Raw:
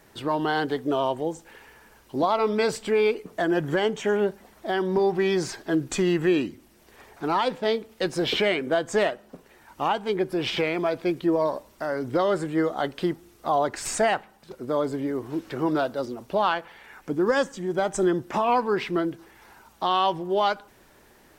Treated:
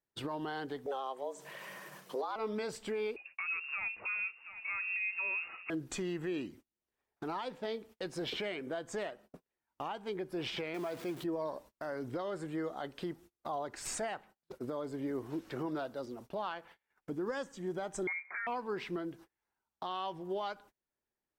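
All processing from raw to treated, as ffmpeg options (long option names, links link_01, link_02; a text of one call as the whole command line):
ffmpeg -i in.wav -filter_complex "[0:a]asettb=1/sr,asplit=3[link_01][link_02][link_03];[link_01]atrim=end=0.864[link_04];[link_02]atrim=start=0.86:end=2.36,asetpts=PTS-STARTPTS,afade=type=in:duration=0.004:curve=qsin,afade=type=out:start_time=1.496:duration=0.004:curve=qsin,equalizer=frequency=110:width=1.6:gain=-8.5,acompressor=mode=upward:threshold=-30dB:ratio=2.5:attack=3.2:release=140:knee=2.83:detection=peak,afreqshift=130[link_05];[link_03]atrim=start=2.356[link_06];[link_04][link_05]acrossfade=duration=0.004:curve1=hsin:curve2=qsin[link_07];[link_07][link_06]acrossfade=duration=0.004:curve1=qsin:curve2=hsin,asettb=1/sr,asplit=3[link_08][link_09][link_10];[link_08]atrim=end=3.164[link_11];[link_09]atrim=start=3.16:end=5.7,asetpts=PTS-STARTPTS,afade=type=in:duration=0.004:curve=qsin,afade=type=out:start_time=2.536:duration=0.004:curve=qsin,aecho=1:1:720:0.126,atrim=end_sample=112014,lowpass=frequency=2500:width_type=q:width=0.5098,lowpass=frequency=2500:width_type=q:width=0.6013,lowpass=frequency=2500:width_type=q:width=0.9,lowpass=frequency=2500:width_type=q:width=2.563,afreqshift=-2900[link_12];[link_10]atrim=start=5.696[link_13];[link_11][link_12]acrossfade=duration=0.004:curve1=hsin:curve2=qsin[link_14];[link_14][link_13]acrossfade=duration=0.004:curve1=qsin:curve2=hsin,asettb=1/sr,asplit=3[link_15][link_16][link_17];[link_15]atrim=end=10.744[link_18];[link_16]atrim=start=10.74:end=11.24,asetpts=PTS-STARTPTS,afade=type=in:duration=0.004:curve=qsin,afade=type=out:start_time=0.496:duration=0.004:curve=qsin,aeval=exprs='val(0)+0.5*0.0251*sgn(val(0))':channel_layout=same,highpass=100,acrusher=bits=7:mode=log:mix=0:aa=0.000001[link_19];[link_17]atrim=start=11.236[link_20];[link_18][link_19]acrossfade=duration=0.004:curve1=hsin:curve2=qsin[link_21];[link_21][link_20]acrossfade=duration=0.004:curve1=qsin:curve2=hsin,asettb=1/sr,asplit=3[link_22][link_23][link_24];[link_22]atrim=end=18.074[link_25];[link_23]atrim=start=18.07:end=18.47,asetpts=PTS-STARTPTS,afade=type=in:duration=0.004:curve=qsin,afade=type=out:start_time=0.396:duration=0.004:curve=qsin,lowpass=frequency=2100:width_type=q:width=0.5098,lowpass=frequency=2100:width_type=q:width=0.6013,lowpass=frequency=2100:width_type=q:width=0.9,lowpass=frequency=2100:width_type=q:width=2.563,afreqshift=-2500,highpass=frequency=620:poles=1[link_26];[link_24]atrim=start=18.466[link_27];[link_25][link_26]acrossfade=duration=0.004:curve1=hsin:curve2=qsin[link_28];[link_28][link_27]acrossfade=duration=0.004:curve1=qsin:curve2=hsin,agate=range=-33dB:threshold=-42dB:ratio=16:detection=peak,alimiter=limit=-24dB:level=0:latency=1:release=474,volume=-5dB" out.wav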